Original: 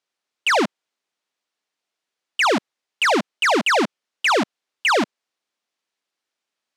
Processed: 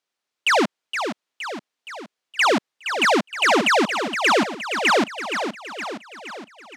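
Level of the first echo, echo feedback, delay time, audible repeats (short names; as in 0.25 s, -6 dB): -8.0 dB, 55%, 0.468 s, 6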